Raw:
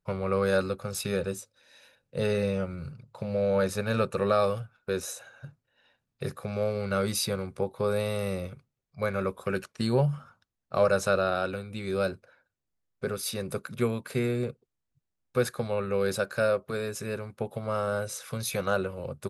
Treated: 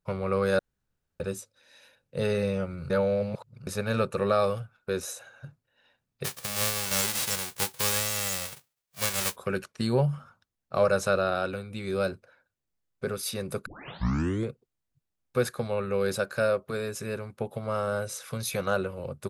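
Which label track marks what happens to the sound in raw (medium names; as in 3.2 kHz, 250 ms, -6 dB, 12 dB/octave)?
0.590000	1.200000	room tone
2.900000	3.670000	reverse
6.240000	9.350000	formants flattened exponent 0.1
13.660000	13.660000	tape start 0.83 s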